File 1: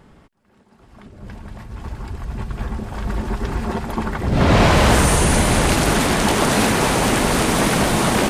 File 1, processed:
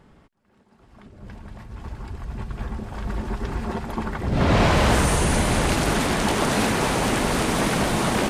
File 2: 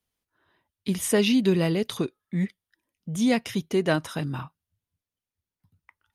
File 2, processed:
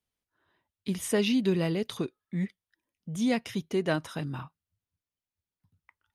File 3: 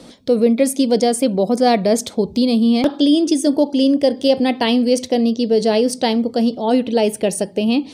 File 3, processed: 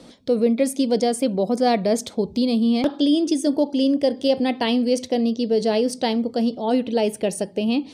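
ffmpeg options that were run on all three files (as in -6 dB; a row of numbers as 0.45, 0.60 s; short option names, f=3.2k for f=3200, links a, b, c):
-af "highshelf=f=9.1k:g=-4.5,volume=-4.5dB"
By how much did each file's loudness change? -4.5, -4.5, -4.5 LU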